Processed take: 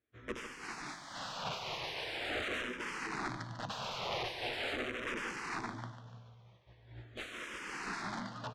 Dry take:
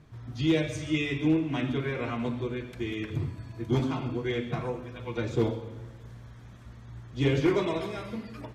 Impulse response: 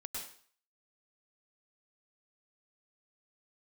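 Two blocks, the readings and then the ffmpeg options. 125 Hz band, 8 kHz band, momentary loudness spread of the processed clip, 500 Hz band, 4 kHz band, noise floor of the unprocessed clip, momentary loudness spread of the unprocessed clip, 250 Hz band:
-18.0 dB, n/a, 10 LU, -13.0 dB, -1.0 dB, -47 dBFS, 20 LU, -18.0 dB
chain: -filter_complex "[0:a]aresample=16000,aeval=exprs='0.0282*(abs(mod(val(0)/0.0282+3,4)-2)-1)':c=same,aresample=44100,highpass=f=110:p=1,aemphasis=mode=production:type=cd,asplit=2[a][b];[b]adelay=16,volume=-4dB[c];[a][c]amix=inputs=2:normalize=0,aeval=exprs='(mod(47.3*val(0)+1,2)-1)/47.3':c=same,lowpass=3.3k,agate=range=-33dB:threshold=-36dB:ratio=3:detection=peak,lowshelf=f=160:g=-9,asplit=2[d][e];[e]aecho=0:1:146|292|438|584|730:0.299|0.134|0.0605|0.0272|0.0122[f];[d][f]amix=inputs=2:normalize=0,asplit=2[g][h];[h]afreqshift=-0.42[i];[g][i]amix=inputs=2:normalize=1,volume=9dB"

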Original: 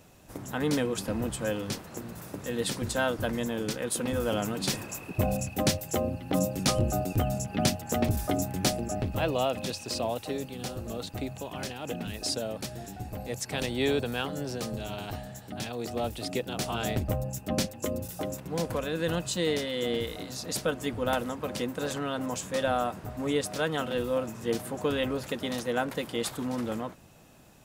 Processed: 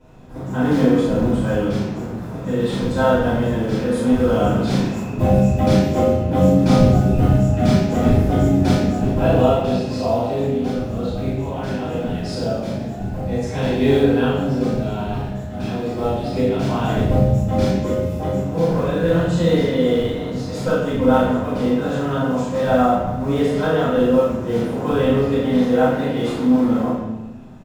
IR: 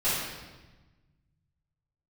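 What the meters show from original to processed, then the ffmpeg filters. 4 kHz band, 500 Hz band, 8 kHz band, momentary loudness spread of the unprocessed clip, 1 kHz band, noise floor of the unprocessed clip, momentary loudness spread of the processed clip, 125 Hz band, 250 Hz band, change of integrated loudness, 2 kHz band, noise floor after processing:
+1.5 dB, +12.0 dB, -5.0 dB, 9 LU, +11.0 dB, -46 dBFS, 9 LU, +14.5 dB, +14.5 dB, +12.5 dB, +6.5 dB, -29 dBFS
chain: -filter_complex "[0:a]lowpass=f=1k:p=1,asplit=2[a][b];[b]acrusher=bits=4:mode=log:mix=0:aa=0.000001,volume=-9dB[c];[a][c]amix=inputs=2:normalize=0,asplit=2[d][e];[e]adelay=36,volume=-2dB[f];[d][f]amix=inputs=2:normalize=0[g];[1:a]atrim=start_sample=2205,asetrate=57330,aresample=44100[h];[g][h]afir=irnorm=-1:irlink=0,volume=-1.5dB"

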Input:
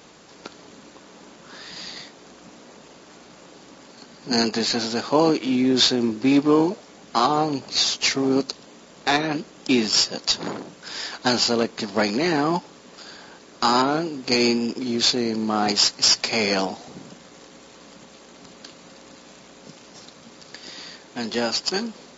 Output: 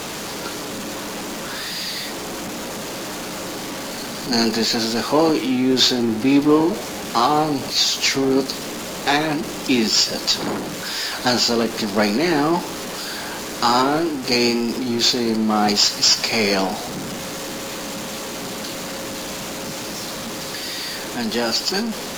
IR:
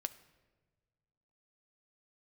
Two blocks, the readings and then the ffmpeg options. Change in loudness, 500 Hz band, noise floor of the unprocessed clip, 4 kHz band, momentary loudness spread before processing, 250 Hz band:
+1.0 dB, +3.0 dB, -48 dBFS, +3.0 dB, 18 LU, +3.0 dB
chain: -filter_complex "[0:a]aeval=exprs='val(0)+0.5*0.0531*sgn(val(0))':c=same[a];[1:a]atrim=start_sample=2205,atrim=end_sample=3969,asetrate=27342,aresample=44100[b];[a][b]afir=irnorm=-1:irlink=0"

